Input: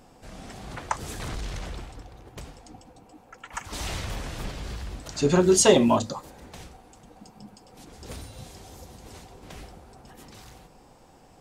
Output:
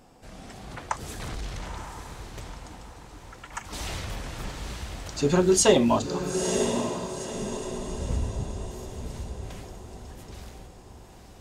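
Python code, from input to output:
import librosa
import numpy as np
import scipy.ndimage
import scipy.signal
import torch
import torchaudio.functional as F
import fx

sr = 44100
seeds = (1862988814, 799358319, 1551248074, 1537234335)

y = fx.tilt_eq(x, sr, slope=-4.0, at=(7.31, 8.71))
y = fx.echo_diffused(y, sr, ms=934, feedback_pct=46, wet_db=-6.5)
y = y * librosa.db_to_amplitude(-1.5)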